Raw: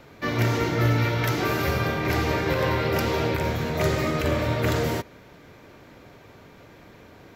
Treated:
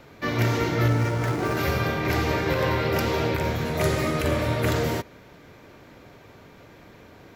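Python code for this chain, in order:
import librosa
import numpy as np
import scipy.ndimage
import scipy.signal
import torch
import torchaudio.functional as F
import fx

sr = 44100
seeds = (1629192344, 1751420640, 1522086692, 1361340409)

y = fx.median_filter(x, sr, points=15, at=(0.88, 1.57))
y = fx.peak_eq(y, sr, hz=9800.0, db=10.5, octaves=0.37, at=(3.65, 4.71))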